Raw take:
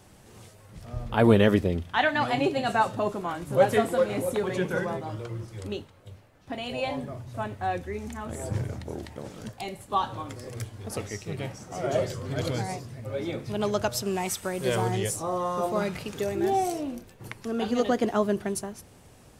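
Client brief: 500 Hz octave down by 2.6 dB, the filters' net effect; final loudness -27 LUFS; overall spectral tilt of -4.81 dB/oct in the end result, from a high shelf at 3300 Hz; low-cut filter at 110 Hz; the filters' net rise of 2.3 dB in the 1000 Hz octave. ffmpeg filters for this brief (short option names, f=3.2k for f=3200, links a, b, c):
-af "highpass=110,equalizer=f=500:t=o:g=-4.5,equalizer=f=1k:t=o:g=5.5,highshelf=f=3.3k:g=-6,volume=2dB"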